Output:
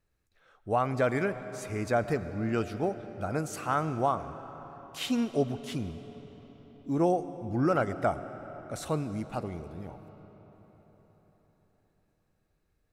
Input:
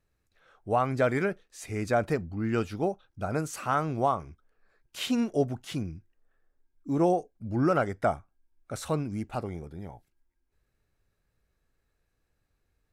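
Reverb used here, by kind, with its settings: algorithmic reverb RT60 4.9 s, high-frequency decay 0.7×, pre-delay 65 ms, DRR 12 dB; trim -1.5 dB

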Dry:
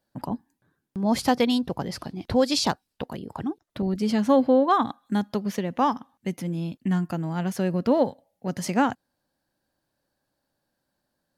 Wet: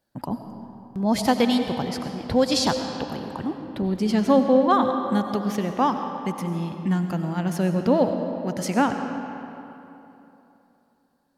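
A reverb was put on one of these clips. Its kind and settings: algorithmic reverb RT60 3.1 s, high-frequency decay 0.65×, pre-delay 55 ms, DRR 6 dB; trim +1 dB

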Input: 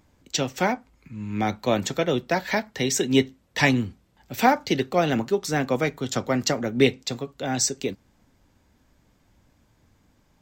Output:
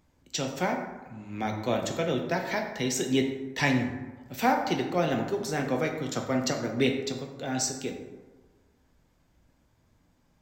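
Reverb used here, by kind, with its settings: plate-style reverb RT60 1.3 s, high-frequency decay 0.45×, DRR 3 dB; trim -6.5 dB

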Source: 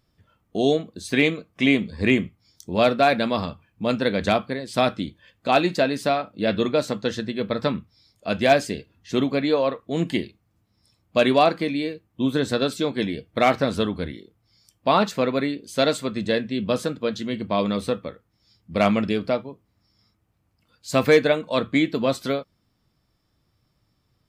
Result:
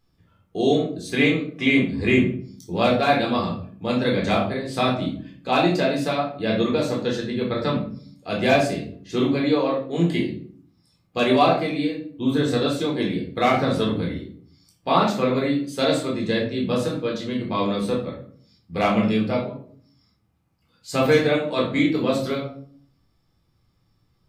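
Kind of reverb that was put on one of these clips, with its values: simulated room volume 550 m³, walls furnished, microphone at 3.9 m; trim -5.5 dB

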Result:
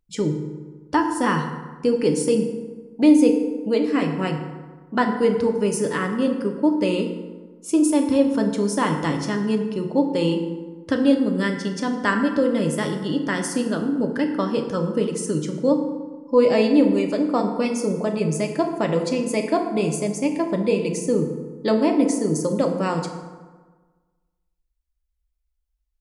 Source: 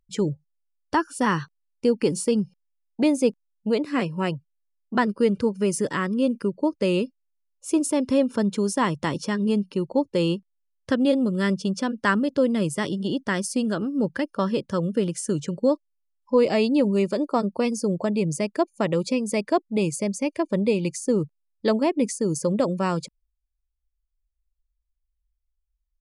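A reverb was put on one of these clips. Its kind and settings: FDN reverb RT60 1.4 s, low-frequency decay 1.05×, high-frequency decay 0.55×, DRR 3 dB

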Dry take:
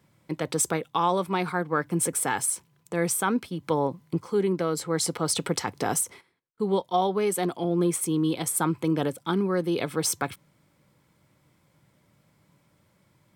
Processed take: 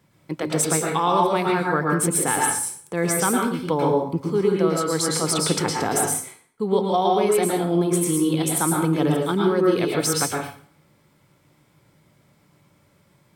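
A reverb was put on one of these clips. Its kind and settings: plate-style reverb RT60 0.51 s, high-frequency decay 0.85×, pre-delay 100 ms, DRR -1 dB; trim +2 dB

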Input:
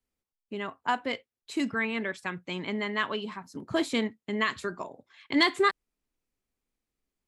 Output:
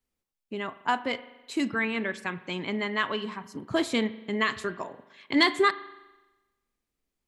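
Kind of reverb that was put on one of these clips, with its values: spring tank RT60 1.1 s, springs 41 ms, chirp 20 ms, DRR 15 dB; trim +1.5 dB

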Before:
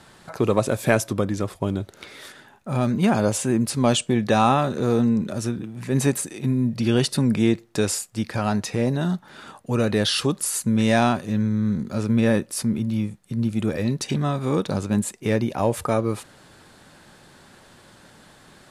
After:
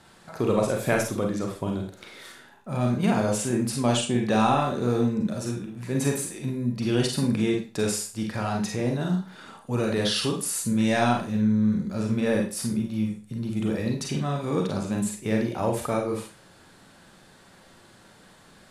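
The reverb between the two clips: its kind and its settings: Schroeder reverb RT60 0.35 s, combs from 33 ms, DRR 1 dB; trim -5.5 dB

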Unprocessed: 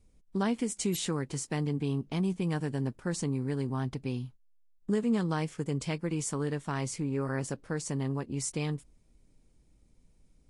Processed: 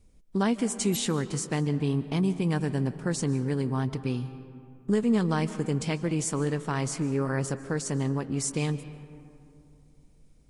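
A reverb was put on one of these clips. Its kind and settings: algorithmic reverb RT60 2.7 s, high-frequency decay 0.4×, pre-delay 105 ms, DRR 13.5 dB; trim +4 dB

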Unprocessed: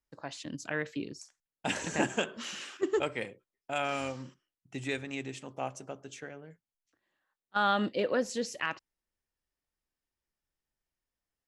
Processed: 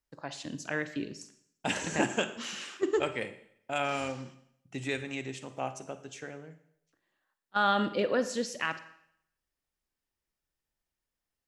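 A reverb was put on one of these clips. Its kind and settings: Schroeder reverb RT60 0.7 s, DRR 11.5 dB; trim +1 dB

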